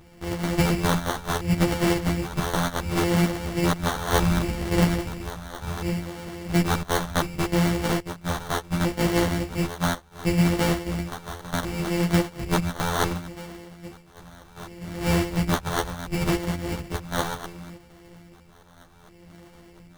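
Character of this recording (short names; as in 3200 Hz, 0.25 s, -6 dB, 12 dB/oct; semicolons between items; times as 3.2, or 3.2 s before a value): a buzz of ramps at a fixed pitch in blocks of 256 samples; phasing stages 2, 0.68 Hz, lowest notch 290–2600 Hz; aliases and images of a low sample rate 2500 Hz, jitter 0%; a shimmering, thickened sound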